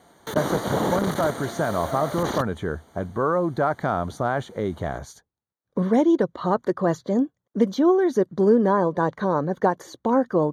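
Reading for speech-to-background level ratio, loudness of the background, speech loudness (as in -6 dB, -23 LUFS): 5.5 dB, -29.0 LUFS, -23.5 LUFS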